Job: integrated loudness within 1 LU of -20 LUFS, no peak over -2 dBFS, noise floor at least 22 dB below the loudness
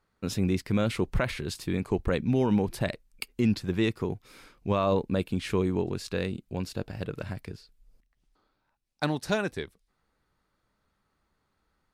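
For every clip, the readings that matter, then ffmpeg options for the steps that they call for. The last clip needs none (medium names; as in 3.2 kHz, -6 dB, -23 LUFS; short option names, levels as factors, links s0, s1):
loudness -29.5 LUFS; peak level -15.0 dBFS; loudness target -20.0 LUFS
-> -af "volume=2.99"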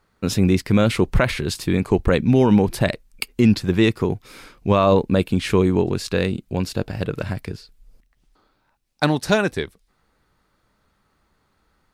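loudness -20.0 LUFS; peak level -5.5 dBFS; noise floor -67 dBFS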